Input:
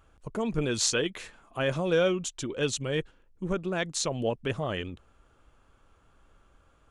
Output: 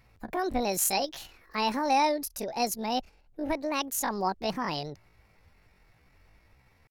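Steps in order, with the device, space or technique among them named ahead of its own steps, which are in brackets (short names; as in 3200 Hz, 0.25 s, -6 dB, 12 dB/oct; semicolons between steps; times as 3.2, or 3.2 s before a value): chipmunk voice (pitch shift +8.5 st)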